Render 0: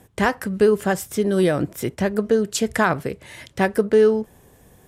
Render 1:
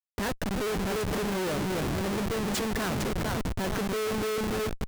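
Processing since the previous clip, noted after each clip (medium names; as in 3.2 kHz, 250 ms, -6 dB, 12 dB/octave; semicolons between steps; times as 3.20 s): two-band feedback delay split 670 Hz, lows 290 ms, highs 454 ms, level -7.5 dB; Schmitt trigger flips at -26.5 dBFS; trim -9 dB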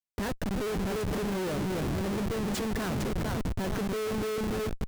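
bass shelf 490 Hz +5 dB; trim -4.5 dB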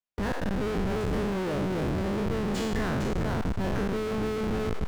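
spectral sustain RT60 1.15 s; low-pass 2.9 kHz 6 dB/octave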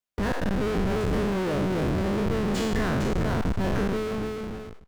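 fade out at the end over 1.02 s; band-stop 840 Hz, Q 27; trim +3 dB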